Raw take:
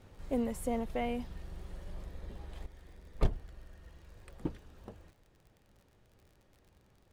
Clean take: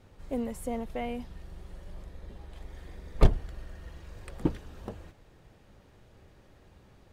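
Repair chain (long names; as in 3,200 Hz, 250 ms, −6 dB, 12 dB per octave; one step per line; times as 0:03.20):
click removal
level 0 dB, from 0:02.66 +9 dB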